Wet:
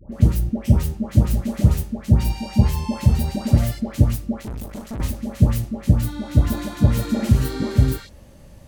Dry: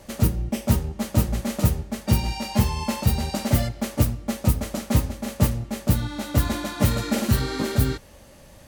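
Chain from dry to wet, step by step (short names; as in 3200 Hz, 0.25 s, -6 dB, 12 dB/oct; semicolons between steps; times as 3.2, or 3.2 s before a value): low shelf 350 Hz +11 dB; dispersion highs, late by 0.123 s, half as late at 1100 Hz; 4.41–5 tube stage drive 23 dB, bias 0.7; gain -4.5 dB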